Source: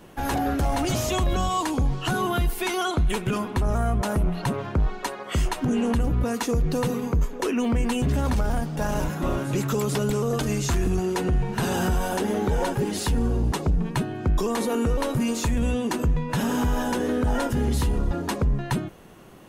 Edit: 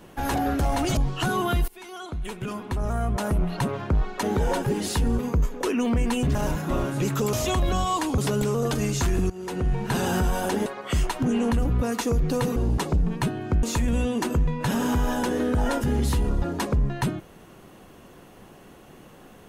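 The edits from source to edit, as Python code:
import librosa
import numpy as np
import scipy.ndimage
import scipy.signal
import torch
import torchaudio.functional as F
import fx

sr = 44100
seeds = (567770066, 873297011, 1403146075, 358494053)

y = fx.edit(x, sr, fx.move(start_s=0.97, length_s=0.85, to_s=9.86),
    fx.fade_in_from(start_s=2.53, length_s=1.81, floor_db=-21.5),
    fx.swap(start_s=5.08, length_s=1.9, other_s=12.34, other_length_s=0.96),
    fx.cut(start_s=8.14, length_s=0.74),
    fx.fade_in_from(start_s=10.98, length_s=0.46, floor_db=-19.0),
    fx.cut(start_s=14.37, length_s=0.95), tone=tone)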